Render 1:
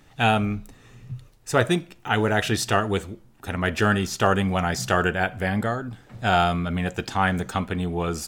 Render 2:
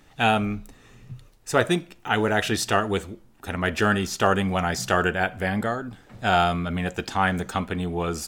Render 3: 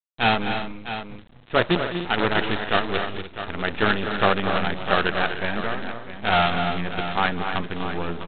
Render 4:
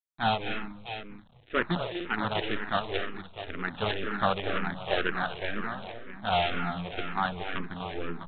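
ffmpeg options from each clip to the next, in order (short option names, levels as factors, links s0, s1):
-af "equalizer=f=120:t=o:w=0.69:g=-5.5"
-af "aresample=8000,acrusher=bits=4:dc=4:mix=0:aa=0.000001,aresample=44100,aecho=1:1:206|246|298|653:0.2|0.355|0.224|0.282"
-filter_complex "[0:a]asplit=2[s0][s1];[s1]afreqshift=-2[s2];[s0][s2]amix=inputs=2:normalize=1,volume=0.596"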